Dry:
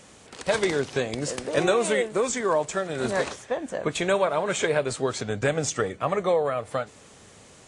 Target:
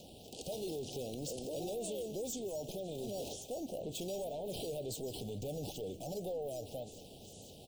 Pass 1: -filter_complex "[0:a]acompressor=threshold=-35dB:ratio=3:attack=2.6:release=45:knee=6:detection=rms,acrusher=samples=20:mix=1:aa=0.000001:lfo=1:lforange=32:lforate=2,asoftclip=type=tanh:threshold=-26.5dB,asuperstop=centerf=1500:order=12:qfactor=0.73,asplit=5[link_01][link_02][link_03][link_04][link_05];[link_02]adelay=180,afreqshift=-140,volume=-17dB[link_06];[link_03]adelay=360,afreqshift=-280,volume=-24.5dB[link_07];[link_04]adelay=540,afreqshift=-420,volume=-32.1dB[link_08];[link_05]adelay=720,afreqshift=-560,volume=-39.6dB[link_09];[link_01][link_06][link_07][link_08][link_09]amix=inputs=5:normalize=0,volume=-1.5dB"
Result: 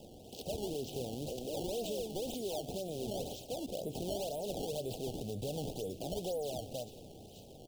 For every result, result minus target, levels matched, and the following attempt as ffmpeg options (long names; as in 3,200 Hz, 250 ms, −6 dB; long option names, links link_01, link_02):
sample-and-hold swept by an LFO: distortion +11 dB; soft clipping: distortion −9 dB
-filter_complex "[0:a]acompressor=threshold=-35dB:ratio=3:attack=2.6:release=45:knee=6:detection=rms,acrusher=samples=4:mix=1:aa=0.000001:lfo=1:lforange=6.4:lforate=2,asoftclip=type=tanh:threshold=-26.5dB,asuperstop=centerf=1500:order=12:qfactor=0.73,asplit=5[link_01][link_02][link_03][link_04][link_05];[link_02]adelay=180,afreqshift=-140,volume=-17dB[link_06];[link_03]adelay=360,afreqshift=-280,volume=-24.5dB[link_07];[link_04]adelay=540,afreqshift=-420,volume=-32.1dB[link_08];[link_05]adelay=720,afreqshift=-560,volume=-39.6dB[link_09];[link_01][link_06][link_07][link_08][link_09]amix=inputs=5:normalize=0,volume=-1.5dB"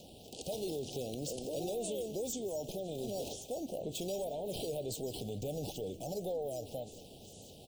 soft clipping: distortion −9 dB
-filter_complex "[0:a]acompressor=threshold=-35dB:ratio=3:attack=2.6:release=45:knee=6:detection=rms,acrusher=samples=4:mix=1:aa=0.000001:lfo=1:lforange=6.4:lforate=2,asoftclip=type=tanh:threshold=-33dB,asuperstop=centerf=1500:order=12:qfactor=0.73,asplit=5[link_01][link_02][link_03][link_04][link_05];[link_02]adelay=180,afreqshift=-140,volume=-17dB[link_06];[link_03]adelay=360,afreqshift=-280,volume=-24.5dB[link_07];[link_04]adelay=540,afreqshift=-420,volume=-32.1dB[link_08];[link_05]adelay=720,afreqshift=-560,volume=-39.6dB[link_09];[link_01][link_06][link_07][link_08][link_09]amix=inputs=5:normalize=0,volume=-1.5dB"